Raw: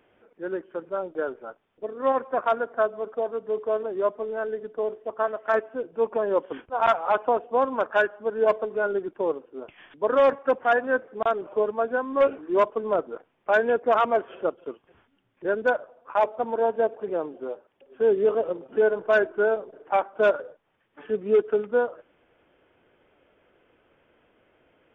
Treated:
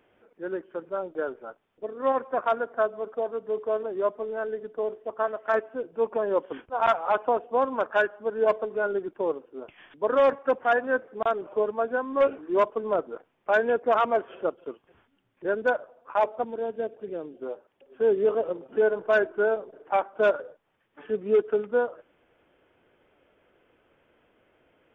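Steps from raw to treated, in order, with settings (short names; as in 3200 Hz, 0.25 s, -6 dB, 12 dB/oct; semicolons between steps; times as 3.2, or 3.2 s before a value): 16.44–17.42 bell 950 Hz -13.5 dB 1.5 oct; gain -1.5 dB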